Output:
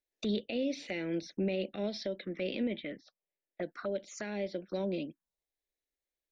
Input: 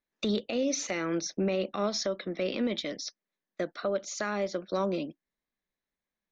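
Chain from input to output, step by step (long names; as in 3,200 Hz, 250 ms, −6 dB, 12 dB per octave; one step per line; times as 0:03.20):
0:02.63–0:03.63: low-pass filter 2,900 Hz 24 dB per octave
phaser swept by the level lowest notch 190 Hz, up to 1,200 Hz, full sweep at −29.5 dBFS
level −2.5 dB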